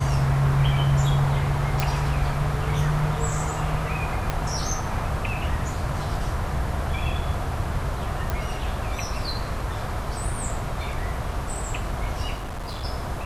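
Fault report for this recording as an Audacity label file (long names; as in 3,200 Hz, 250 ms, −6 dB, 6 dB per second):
1.800000	1.800000	click
4.300000	4.300000	click −11 dBFS
8.300000	8.300000	click
12.340000	12.850000	clipping −28.5 dBFS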